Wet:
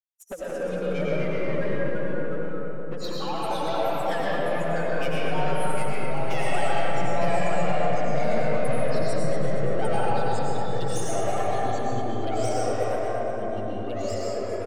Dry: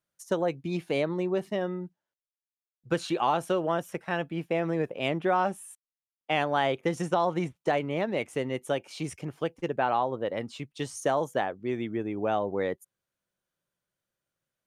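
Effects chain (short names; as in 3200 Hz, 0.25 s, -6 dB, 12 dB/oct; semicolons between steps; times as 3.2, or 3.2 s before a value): per-bin expansion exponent 3; 10–11.38 Bessel high-pass 1100 Hz, order 8; sample leveller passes 1; compressor 6:1, threshold -33 dBFS, peak gain reduction 9 dB; soft clip -36.5 dBFS, distortion -11 dB; envelope flanger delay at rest 10.4 ms, full sweep at -33 dBFS; digital reverb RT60 4.7 s, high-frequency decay 0.3×, pre-delay 60 ms, DRR -7 dB; echoes that change speed 0.14 s, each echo -2 st, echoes 2; on a send: feedback echo 0.233 s, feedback 50%, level -10 dB; on the sum: gain +8.5 dB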